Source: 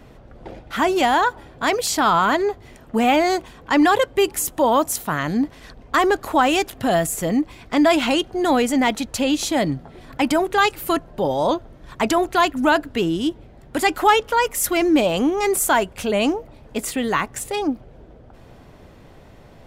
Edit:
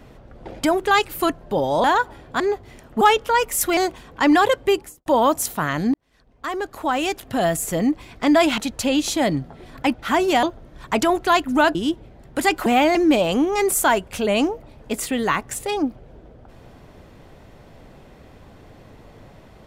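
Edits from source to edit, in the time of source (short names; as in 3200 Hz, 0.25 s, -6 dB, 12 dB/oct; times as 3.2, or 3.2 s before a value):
0.62–1.11 swap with 10.29–11.51
1.67–2.37 cut
2.98–3.27 swap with 14.04–14.8
4.15–4.56 studio fade out
5.44–7.23 fade in
8.08–8.93 cut
12.83–13.13 cut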